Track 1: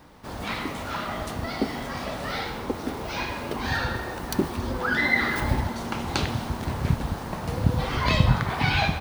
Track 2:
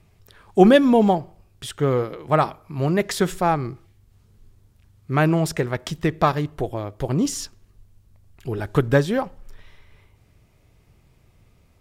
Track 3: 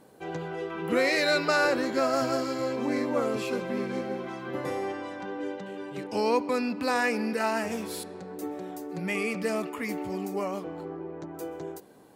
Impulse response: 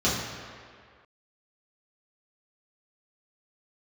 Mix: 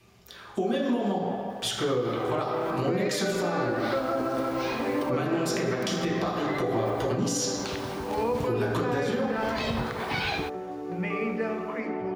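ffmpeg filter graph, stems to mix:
-filter_complex "[0:a]adelay=1500,volume=-3.5dB[link_01];[1:a]lowshelf=frequency=200:gain=-9,acompressor=threshold=-26dB:ratio=6,volume=-1.5dB,asplit=3[link_02][link_03][link_04];[link_03]volume=-5.5dB[link_05];[2:a]lowpass=1700,bandreject=frequency=50:width_type=h:width=6,bandreject=frequency=100:width_type=h:width=6,bandreject=frequency=150:width_type=h:width=6,bandreject=frequency=200:width_type=h:width=6,adelay=1950,volume=1dB,asplit=2[link_06][link_07];[link_07]volume=-15.5dB[link_08];[link_04]apad=whole_len=463173[link_09];[link_01][link_09]sidechaincompress=threshold=-44dB:ratio=12:attack=5.9:release=255[link_10];[3:a]atrim=start_sample=2205[link_11];[link_05][link_08]amix=inputs=2:normalize=0[link_12];[link_12][link_11]afir=irnorm=-1:irlink=0[link_13];[link_10][link_02][link_06][link_13]amix=inputs=4:normalize=0,lowshelf=frequency=250:gain=-10.5,acrossover=split=460|3000[link_14][link_15][link_16];[link_15]acompressor=threshold=-27dB:ratio=6[link_17];[link_14][link_17][link_16]amix=inputs=3:normalize=0,alimiter=limit=-18dB:level=0:latency=1:release=100"

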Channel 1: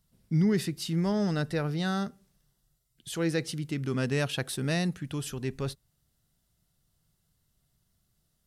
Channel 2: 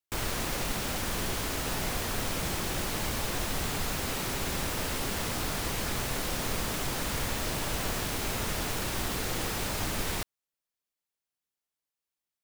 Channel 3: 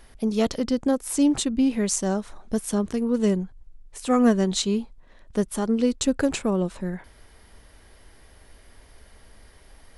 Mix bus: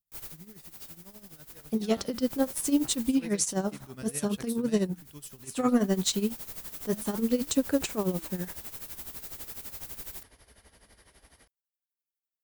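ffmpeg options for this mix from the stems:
ffmpeg -i stem1.wav -i stem2.wav -i stem3.wav -filter_complex "[0:a]volume=-11.5dB,afade=type=in:start_time=1.6:duration=0.7:silence=0.266073,asplit=2[link_01][link_02];[1:a]volume=-15.5dB[link_03];[2:a]highpass=55,highshelf=frequency=7200:gain=-11,flanger=delay=3.9:depth=8.2:regen=-79:speed=0.65:shape=sinusoidal,adelay=1500,volume=3dB[link_04];[link_02]apad=whole_len=548296[link_05];[link_03][link_05]sidechaincompress=threshold=-56dB:ratio=6:attack=7.4:release=259[link_06];[link_01][link_06][link_04]amix=inputs=3:normalize=0,aemphasis=mode=production:type=50fm,asoftclip=type=tanh:threshold=-10dB,tremolo=f=12:d=0.76" out.wav

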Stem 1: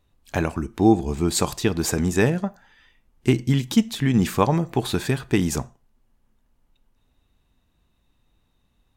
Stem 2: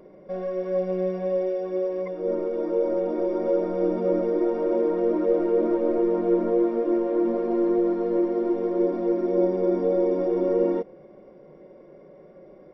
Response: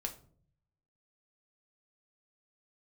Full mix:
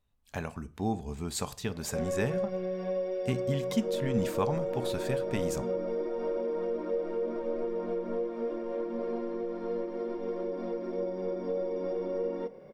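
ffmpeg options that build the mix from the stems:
-filter_complex "[0:a]volume=-13dB,asplit=2[link_01][link_02];[link_02]volume=-11.5dB[link_03];[1:a]highshelf=frequency=3400:gain=9,bandreject=frequency=680:width=13,acompressor=threshold=-26dB:ratio=6,adelay=1650,volume=-4dB,asplit=2[link_04][link_05];[link_05]volume=-8dB[link_06];[2:a]atrim=start_sample=2205[link_07];[link_03][link_06]amix=inputs=2:normalize=0[link_08];[link_08][link_07]afir=irnorm=-1:irlink=0[link_09];[link_01][link_04][link_09]amix=inputs=3:normalize=0,equalizer=frequency=330:width=7.4:gain=-13"

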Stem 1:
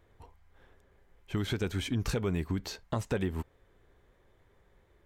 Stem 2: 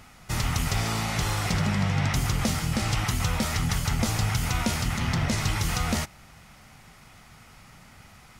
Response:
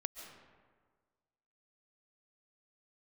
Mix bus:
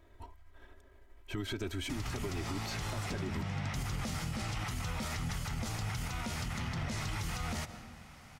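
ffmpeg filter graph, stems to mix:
-filter_complex "[0:a]aeval=exprs='if(lt(val(0),0),0.708*val(0),val(0))':channel_layout=same,aecho=1:1:3.1:0.87,alimiter=level_in=2dB:limit=-24dB:level=0:latency=1:release=193,volume=-2dB,volume=2dB,asplit=2[link_01][link_02];[1:a]highshelf=frequency=11000:gain=-6,adelay=1600,volume=-5.5dB,asplit=2[link_03][link_04];[link_04]volume=-8dB[link_05];[link_02]apad=whole_len=440757[link_06];[link_03][link_06]sidechaincompress=threshold=-36dB:ratio=8:attack=16:release=930[link_07];[2:a]atrim=start_sample=2205[link_08];[link_05][link_08]afir=irnorm=-1:irlink=0[link_09];[link_01][link_07][link_09]amix=inputs=3:normalize=0,alimiter=level_in=4dB:limit=-24dB:level=0:latency=1:release=123,volume=-4dB"

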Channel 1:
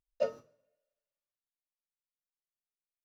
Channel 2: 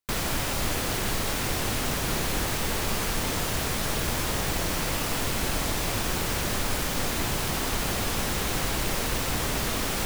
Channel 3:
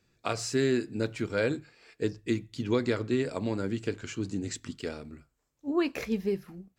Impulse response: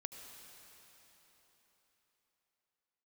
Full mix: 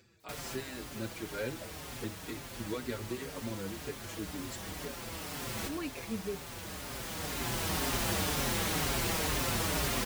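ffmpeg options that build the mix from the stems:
-filter_complex "[0:a]adelay=1400,volume=-13dB[link_01];[1:a]adelay=200,volume=-1.5dB,asplit=2[link_02][link_03];[link_03]volume=-13.5dB[link_04];[2:a]dynaudnorm=framelen=100:gausssize=9:maxgain=9dB,volume=-15dB,asplit=2[link_05][link_06];[link_06]apad=whole_len=452342[link_07];[link_02][link_07]sidechaincompress=threshold=-50dB:ratio=8:attack=12:release=1120[link_08];[3:a]atrim=start_sample=2205[link_09];[link_04][link_09]afir=irnorm=-1:irlink=0[link_10];[link_01][link_08][link_05][link_10]amix=inputs=4:normalize=0,highpass=46,acompressor=mode=upward:threshold=-45dB:ratio=2.5,asplit=2[link_11][link_12];[link_12]adelay=5.4,afreqshift=-2[link_13];[link_11][link_13]amix=inputs=2:normalize=1"

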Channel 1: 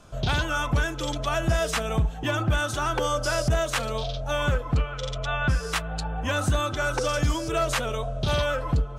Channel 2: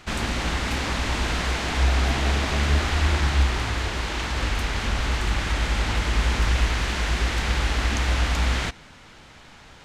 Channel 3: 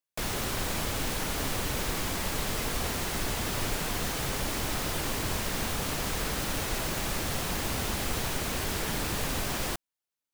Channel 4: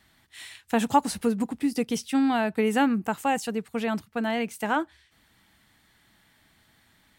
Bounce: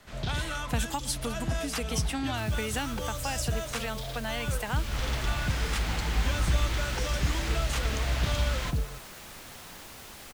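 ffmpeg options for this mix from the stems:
ffmpeg -i stem1.wav -i stem2.wav -i stem3.wav -i stem4.wav -filter_complex "[0:a]volume=-6dB[link_01];[1:a]volume=-6dB,afade=type=in:start_time=4.69:duration=0.27:silence=0.237137[link_02];[2:a]lowshelf=frequency=440:gain=-7.5,adelay=2200,volume=-12.5dB[link_03];[3:a]equalizer=frequency=190:width=0.53:gain=-12,volume=2.5dB[link_04];[link_01][link_02][link_03][link_04]amix=inputs=4:normalize=0,acrossover=split=210|3000[link_05][link_06][link_07];[link_06]acompressor=threshold=-33dB:ratio=6[link_08];[link_05][link_08][link_07]amix=inputs=3:normalize=0" out.wav

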